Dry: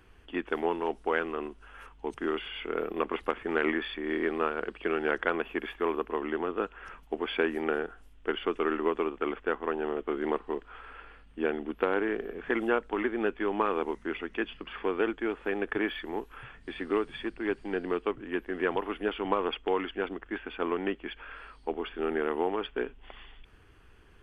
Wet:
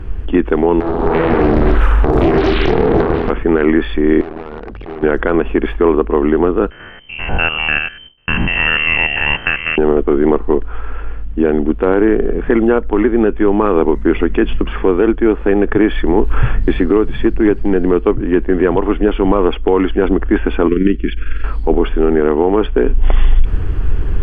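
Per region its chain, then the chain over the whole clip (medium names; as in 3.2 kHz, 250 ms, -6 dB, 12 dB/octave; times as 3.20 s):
0.80–3.30 s: reverse bouncing-ball echo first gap 30 ms, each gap 1.1×, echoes 7, each echo -2 dB + compression 16:1, threshold -37 dBFS + loudspeaker Doppler distortion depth 0.78 ms
4.21–5.03 s: compression 12:1, threshold -36 dBFS + distance through air 53 m + transformer saturation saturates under 2.6 kHz
6.70–9.78 s: spectrogram pixelated in time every 100 ms + gate with hold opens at -43 dBFS, closes at -51 dBFS + frequency inversion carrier 3.1 kHz
20.68–21.44 s: AM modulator 22 Hz, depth 35% + Butterworth band-stop 780 Hz, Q 0.54
whole clip: tilt EQ -4 dB/octave; gain riding 0.5 s; loudness maximiser +17 dB; trim -1 dB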